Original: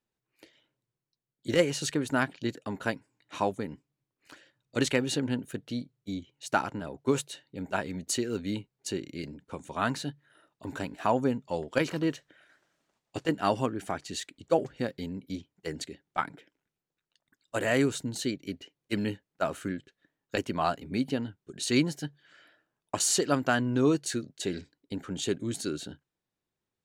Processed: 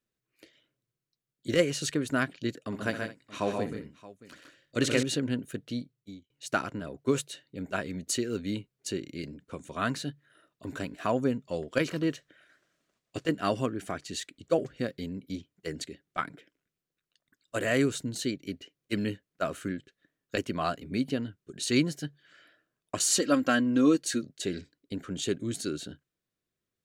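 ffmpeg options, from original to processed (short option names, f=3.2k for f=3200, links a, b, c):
-filter_complex "[0:a]asettb=1/sr,asplit=3[a][b][c];[a]atrim=end=2.594[d];[b]atrim=start=2.59:end=5.03,asetpts=PTS-STARTPTS,afade=t=in:d=0.004:c=qsin,afade=t=out:st=2.436:d=0.004:c=qsin,aecho=1:1:64|128|156|211|624:0.266|0.501|0.422|0.126|0.119,atrim=end_sample=107604[e];[c]atrim=start=5.026[f];[d][e]acrossfade=d=0.004:c1=hsin:c2=qsin[g];[g][f]acrossfade=d=0.004:c1=qsin:c2=hsin,asettb=1/sr,asplit=3[h][i][j];[h]atrim=end=23.114[k];[i]atrim=start=23.11:end=24.22,asetpts=PTS-STARTPTS,afade=t=in:d=0.004:c=qsin,afade=t=out:st=1.106:d=0.004:c=qsin,aecho=1:1:3.7:0.67,atrim=end_sample=48951[l];[j]atrim=start=24.216[m];[k][l]acrossfade=d=0.004:c1=hsin:c2=qsin[n];[n][m]acrossfade=d=0.004:c1=qsin:c2=hsin,asplit=2[o][p];[o]atrim=end=6.3,asetpts=PTS-STARTPTS,afade=t=out:st=5.77:d=0.53[q];[p]atrim=start=6.3,asetpts=PTS-STARTPTS,afade=t=in:d=0.004:c=hsin[r];[q][r]concat=n=2:v=0:a=1,equalizer=f=860:t=o:w=0.24:g=-14.5"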